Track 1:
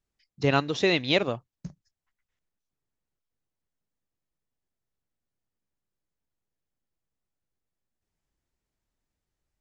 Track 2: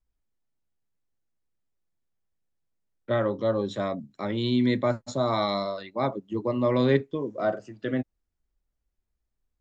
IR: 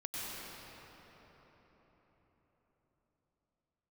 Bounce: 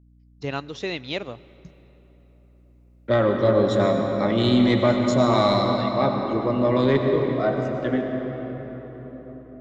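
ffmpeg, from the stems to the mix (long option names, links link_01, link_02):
-filter_complex "[0:a]agate=range=-13dB:threshold=-48dB:ratio=16:detection=peak,aeval=exprs='val(0)+0.00447*(sin(2*PI*60*n/s)+sin(2*PI*2*60*n/s)/2+sin(2*PI*3*60*n/s)/3+sin(2*PI*4*60*n/s)/4+sin(2*PI*5*60*n/s)/5)':channel_layout=same,volume=-6.5dB,asplit=3[link_01][link_02][link_03];[link_02]volume=-22.5dB[link_04];[1:a]dynaudnorm=framelen=520:gausssize=5:maxgain=14.5dB,asoftclip=type=tanh:threshold=-4.5dB,volume=-4dB,asplit=2[link_05][link_06];[link_06]volume=-5.5dB[link_07];[link_03]apad=whole_len=423631[link_08];[link_05][link_08]sidechaingate=range=-33dB:threshold=-54dB:ratio=16:detection=peak[link_09];[2:a]atrim=start_sample=2205[link_10];[link_04][link_07]amix=inputs=2:normalize=0[link_11];[link_11][link_10]afir=irnorm=-1:irlink=0[link_12];[link_01][link_09][link_12]amix=inputs=3:normalize=0"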